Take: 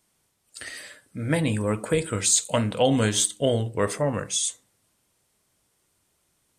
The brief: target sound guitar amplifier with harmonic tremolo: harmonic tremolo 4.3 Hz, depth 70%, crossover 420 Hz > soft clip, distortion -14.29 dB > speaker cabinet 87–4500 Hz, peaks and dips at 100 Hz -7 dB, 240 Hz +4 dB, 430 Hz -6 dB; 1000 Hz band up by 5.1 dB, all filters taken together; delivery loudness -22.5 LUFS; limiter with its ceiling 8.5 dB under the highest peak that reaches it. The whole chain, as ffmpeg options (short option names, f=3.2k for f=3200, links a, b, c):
-filter_complex "[0:a]equalizer=f=1k:t=o:g=7,alimiter=limit=-14.5dB:level=0:latency=1,acrossover=split=420[a][b];[a]aeval=exprs='val(0)*(1-0.7/2+0.7/2*cos(2*PI*4.3*n/s))':c=same[c];[b]aeval=exprs='val(0)*(1-0.7/2-0.7/2*cos(2*PI*4.3*n/s))':c=same[d];[c][d]amix=inputs=2:normalize=0,asoftclip=threshold=-24dB,highpass=87,equalizer=f=100:t=q:w=4:g=-7,equalizer=f=240:t=q:w=4:g=4,equalizer=f=430:t=q:w=4:g=-6,lowpass=f=4.5k:w=0.5412,lowpass=f=4.5k:w=1.3066,volume=12dB"